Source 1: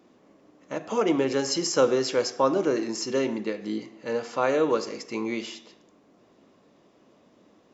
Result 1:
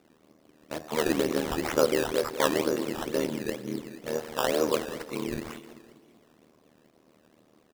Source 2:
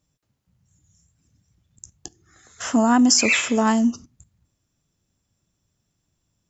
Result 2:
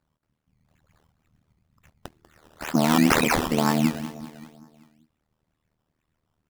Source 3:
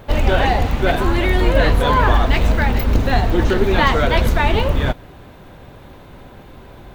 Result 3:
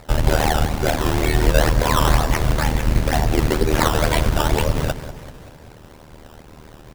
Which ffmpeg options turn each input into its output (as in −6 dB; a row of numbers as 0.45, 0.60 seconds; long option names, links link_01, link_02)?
-filter_complex "[0:a]tremolo=f=77:d=0.974,asplit=2[link_01][link_02];[link_02]adelay=193,lowpass=frequency=3800:poles=1,volume=-12.5dB,asplit=2[link_03][link_04];[link_04]adelay=193,lowpass=frequency=3800:poles=1,volume=0.54,asplit=2[link_05][link_06];[link_06]adelay=193,lowpass=frequency=3800:poles=1,volume=0.54,asplit=2[link_07][link_08];[link_08]adelay=193,lowpass=frequency=3800:poles=1,volume=0.54,asplit=2[link_09][link_10];[link_10]adelay=193,lowpass=frequency=3800:poles=1,volume=0.54,asplit=2[link_11][link_12];[link_12]adelay=193,lowpass=frequency=3800:poles=1,volume=0.54[link_13];[link_01][link_03][link_05][link_07][link_09][link_11][link_13]amix=inputs=7:normalize=0,acrusher=samples=14:mix=1:aa=0.000001:lfo=1:lforange=14:lforate=2.1,volume=1dB"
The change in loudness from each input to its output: −2.5, −4.0, −2.5 LU